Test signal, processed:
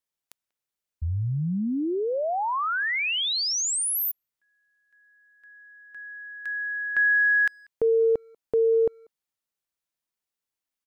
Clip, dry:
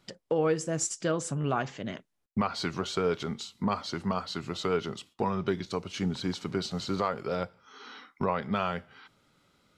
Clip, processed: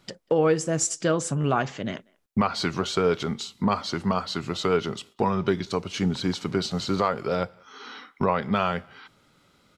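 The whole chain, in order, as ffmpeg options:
-filter_complex "[0:a]asplit=2[s0][s1];[s1]adelay=190,highpass=300,lowpass=3400,asoftclip=type=hard:threshold=0.0531,volume=0.0355[s2];[s0][s2]amix=inputs=2:normalize=0,volume=1.88"

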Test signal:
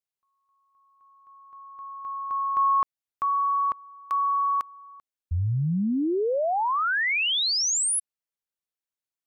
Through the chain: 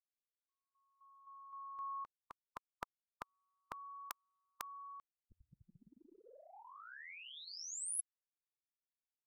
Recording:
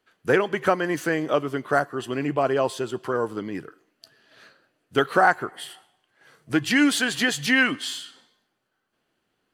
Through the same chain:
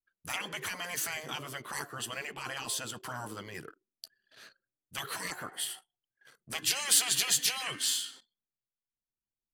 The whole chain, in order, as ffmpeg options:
-af "afftfilt=real='re*lt(hypot(re,im),0.141)':imag='im*lt(hypot(re,im),0.141)':win_size=1024:overlap=0.75,crystalizer=i=3:c=0,anlmdn=0.00631,volume=0.531"

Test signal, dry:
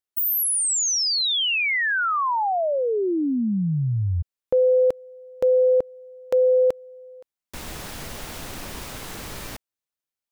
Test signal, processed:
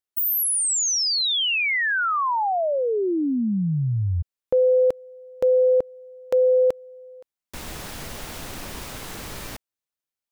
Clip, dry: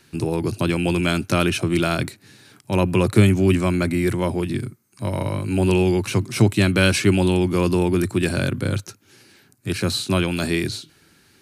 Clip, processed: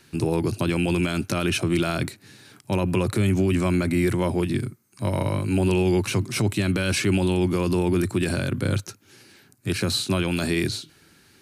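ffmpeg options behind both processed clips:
-af "alimiter=limit=0.211:level=0:latency=1:release=42"

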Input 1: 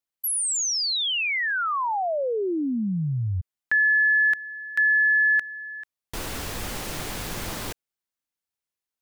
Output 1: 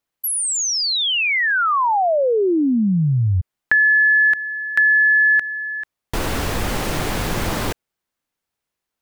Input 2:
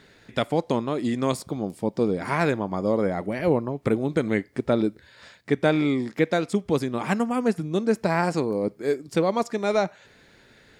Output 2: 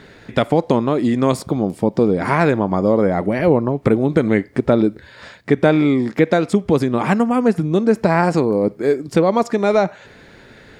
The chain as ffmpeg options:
-filter_complex "[0:a]highshelf=f=2800:g=-8,asplit=2[s0][s1];[s1]acompressor=threshold=0.02:ratio=6:attack=38:release=71:detection=peak,volume=1.41[s2];[s0][s2]amix=inputs=2:normalize=0,volume=1.68"

